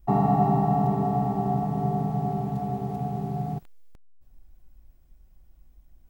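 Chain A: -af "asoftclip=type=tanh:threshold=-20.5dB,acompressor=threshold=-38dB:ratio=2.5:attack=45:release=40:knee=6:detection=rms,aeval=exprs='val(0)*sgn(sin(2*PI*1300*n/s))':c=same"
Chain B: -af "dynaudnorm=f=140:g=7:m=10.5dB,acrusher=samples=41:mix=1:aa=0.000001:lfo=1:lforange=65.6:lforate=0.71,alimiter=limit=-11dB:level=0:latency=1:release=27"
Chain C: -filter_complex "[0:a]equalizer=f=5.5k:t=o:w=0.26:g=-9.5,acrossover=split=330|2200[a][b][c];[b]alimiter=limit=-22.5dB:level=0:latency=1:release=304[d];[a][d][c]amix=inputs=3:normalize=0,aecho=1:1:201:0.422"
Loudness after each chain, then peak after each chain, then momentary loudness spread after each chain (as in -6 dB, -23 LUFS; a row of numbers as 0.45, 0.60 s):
-33.0, -19.5, -26.0 LUFS; -24.5, -11.0, -11.5 dBFS; 18, 3, 8 LU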